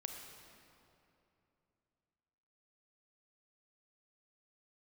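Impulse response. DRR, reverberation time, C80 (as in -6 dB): 3.0 dB, 2.9 s, 4.5 dB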